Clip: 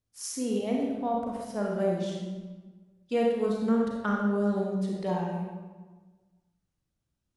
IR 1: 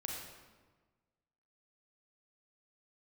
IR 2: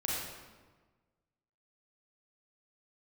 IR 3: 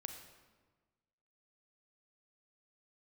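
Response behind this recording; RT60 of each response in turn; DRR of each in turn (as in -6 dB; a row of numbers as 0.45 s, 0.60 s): 1; 1.4 s, 1.4 s, 1.4 s; -1.5 dB, -5.5 dB, 5.0 dB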